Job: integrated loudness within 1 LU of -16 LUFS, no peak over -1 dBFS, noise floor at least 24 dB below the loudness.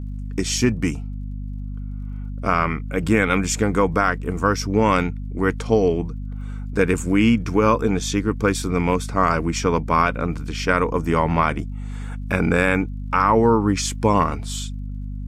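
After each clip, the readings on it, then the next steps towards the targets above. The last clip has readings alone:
tick rate 39 per s; hum 50 Hz; highest harmonic 250 Hz; hum level -27 dBFS; loudness -20.5 LUFS; peak level -4.5 dBFS; loudness target -16.0 LUFS
-> de-click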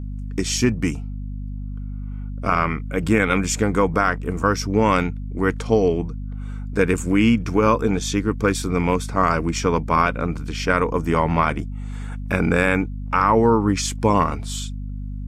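tick rate 0.13 per s; hum 50 Hz; highest harmonic 250 Hz; hum level -27 dBFS
-> hum notches 50/100/150/200/250 Hz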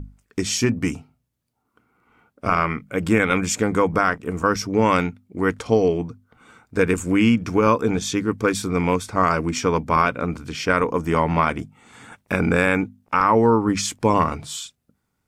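hum not found; loudness -21.0 LUFS; peak level -5.0 dBFS; loudness target -16.0 LUFS
-> trim +5 dB; peak limiter -1 dBFS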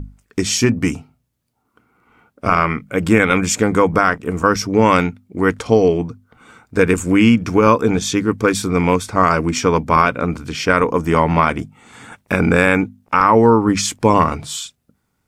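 loudness -16.0 LUFS; peak level -1.0 dBFS; noise floor -69 dBFS

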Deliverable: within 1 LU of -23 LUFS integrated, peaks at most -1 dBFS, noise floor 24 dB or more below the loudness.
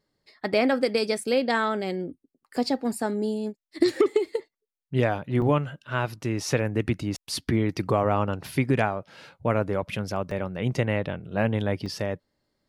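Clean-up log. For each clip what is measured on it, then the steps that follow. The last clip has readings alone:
dropouts 4; longest dropout 3.4 ms; loudness -26.5 LUFS; peak level -8.5 dBFS; loudness target -23.0 LUFS
-> interpolate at 2.56/5.42/10.31/11.86 s, 3.4 ms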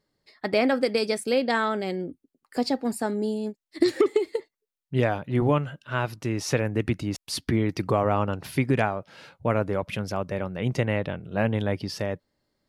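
dropouts 0; loudness -26.5 LUFS; peak level -8.5 dBFS; loudness target -23.0 LUFS
-> trim +3.5 dB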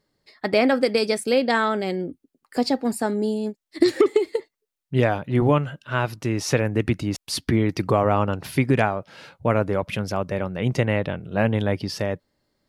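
loudness -23.0 LUFS; peak level -5.0 dBFS; noise floor -84 dBFS

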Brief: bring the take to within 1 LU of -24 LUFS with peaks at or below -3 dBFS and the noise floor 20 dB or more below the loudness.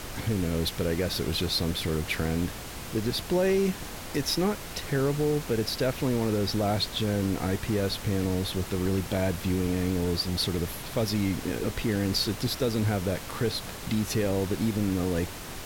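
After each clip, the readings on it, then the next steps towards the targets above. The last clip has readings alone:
noise floor -39 dBFS; noise floor target -49 dBFS; loudness -28.5 LUFS; peak level -14.5 dBFS; loudness target -24.0 LUFS
-> noise print and reduce 10 dB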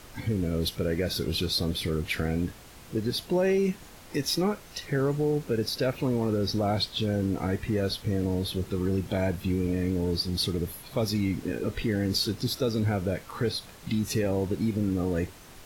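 noise floor -49 dBFS; loudness -28.5 LUFS; peak level -15.0 dBFS; loudness target -24.0 LUFS
-> trim +4.5 dB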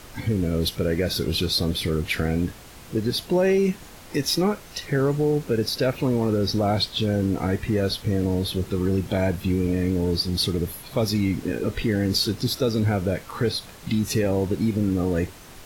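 loudness -24.0 LUFS; peak level -10.5 dBFS; noise floor -44 dBFS

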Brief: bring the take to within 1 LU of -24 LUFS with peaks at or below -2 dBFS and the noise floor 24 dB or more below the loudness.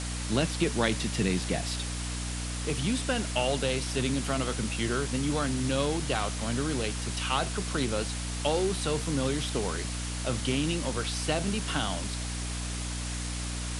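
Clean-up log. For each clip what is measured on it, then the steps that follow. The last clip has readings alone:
hum 60 Hz; highest harmonic 300 Hz; hum level -33 dBFS; noise floor -34 dBFS; noise floor target -54 dBFS; loudness -30.0 LUFS; peak level -10.5 dBFS; loudness target -24.0 LUFS
-> de-hum 60 Hz, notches 5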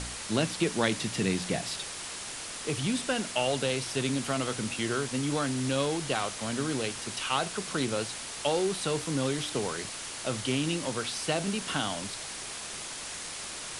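hum not found; noise floor -40 dBFS; noise floor target -55 dBFS
-> noise print and reduce 15 dB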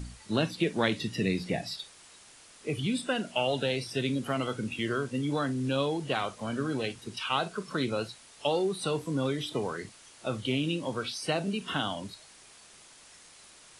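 noise floor -55 dBFS; noise floor target -56 dBFS
-> noise print and reduce 6 dB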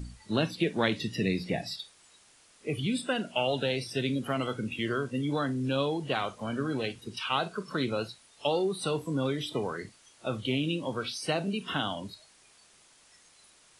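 noise floor -60 dBFS; loudness -31.5 LUFS; peak level -10.5 dBFS; loudness target -24.0 LUFS
-> trim +7.5 dB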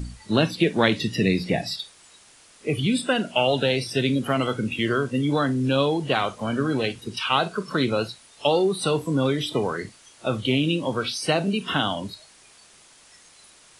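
loudness -24.0 LUFS; peak level -3.0 dBFS; noise floor -53 dBFS

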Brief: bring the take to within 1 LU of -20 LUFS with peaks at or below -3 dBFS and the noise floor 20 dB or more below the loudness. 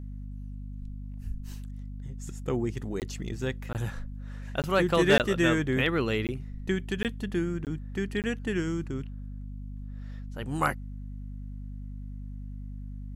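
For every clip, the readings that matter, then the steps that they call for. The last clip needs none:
dropouts 8; longest dropout 18 ms; hum 50 Hz; highest harmonic 250 Hz; hum level -36 dBFS; loudness -29.5 LUFS; peak level -12.0 dBFS; loudness target -20.0 LUFS
-> interpolate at 3.00/3.73/4.62/5.18/6.27/7.03/7.65/8.22 s, 18 ms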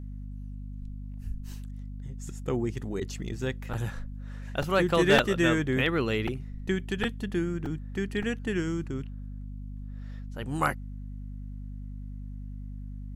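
dropouts 0; hum 50 Hz; highest harmonic 250 Hz; hum level -36 dBFS
-> de-hum 50 Hz, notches 5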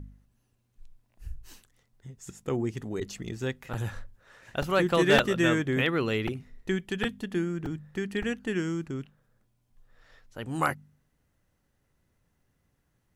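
hum not found; loudness -29.0 LUFS; peak level -10.0 dBFS; loudness target -20.0 LUFS
-> trim +9 dB; peak limiter -3 dBFS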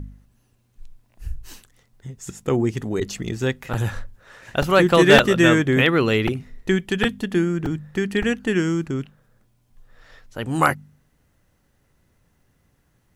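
loudness -20.0 LUFS; peak level -3.0 dBFS; noise floor -65 dBFS

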